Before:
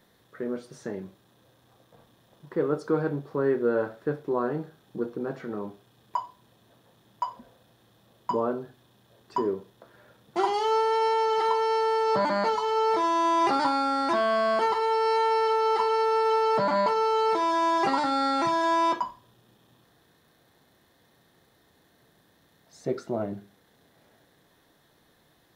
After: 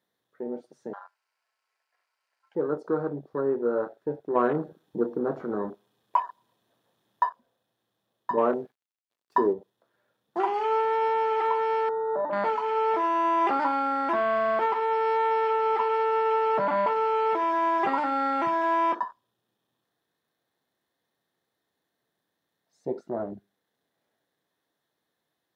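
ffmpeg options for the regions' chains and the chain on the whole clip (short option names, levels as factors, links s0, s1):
-filter_complex "[0:a]asettb=1/sr,asplit=3[s0][s1][s2];[s0]atrim=end=0.934[s3];[s1]atrim=start=0.93:end=2.55,asetpts=PTS-STARTPTS,afade=t=in:d=0.004:c=qsin,afade=t=out:st=1.616:d=0.004:c=qsin,aemphasis=mode=production:type=75fm,aeval=exprs='val(0)*sin(2*PI*1200*n/s)':c=same,highpass=610,lowpass=5400[s4];[s2]atrim=start=2.546[s5];[s3][s4]acrossfade=d=0.004:c1=hsin:c2=qsin[s6];[s6][s5]acrossfade=d=0.004:c1=qsin:c2=hsin,asettb=1/sr,asplit=3[s7][s8][s9];[s7]atrim=end=4.354[s10];[s8]atrim=start=4.35:end=7.29,asetpts=PTS-STARTPTS,afade=t=in:d=0.004:c=qsin,afade=t=out:st=2.936:d=0.004:c=qsin,acontrast=54,aecho=1:1:113|226|339:0.0794|0.0326|0.0134,atrim=end_sample=129654[s11];[s9]atrim=start=7.286[s12];[s10][s11]acrossfade=d=0.004:c1=hsin:c2=qsin[s13];[s13][s12]acrossfade=d=0.004:c1=qsin:c2=hsin,asettb=1/sr,asplit=3[s14][s15][s16];[s14]atrim=end=8.374[s17];[s15]atrim=start=8.37:end=9.53,asetpts=PTS-STARTPTS,afade=t=in:d=0.004:c=qsin,afade=t=out:st=1.156:d=0.004:c=qsin,acontrast=57,aeval=exprs='sgn(val(0))*max(abs(val(0))-0.00422,0)':c=same,lowshelf=f=89:g=-9[s18];[s16]atrim=start=9.526[s19];[s17][s18]acrossfade=d=0.004:c1=hsin:c2=qsin[s20];[s20][s19]acrossfade=d=0.004:c1=qsin:c2=hsin,asettb=1/sr,asplit=3[s21][s22][s23];[s21]atrim=end=11.894[s24];[s22]atrim=start=11.89:end=12.33,asetpts=PTS-STARTPTS,afade=t=in:d=0.004:c=qsin,afade=t=out:st=0.436:d=0.004:c=qsin,bandpass=f=550:t=q:w=1.6,aemphasis=mode=reproduction:type=50fm[s25];[s23]atrim=start=12.326[s26];[s24][s25]acrossfade=d=0.004:c1=hsin:c2=qsin[s27];[s27][s26]acrossfade=d=0.004:c1=qsin:c2=hsin,highpass=f=260:p=1,afwtdn=0.0178"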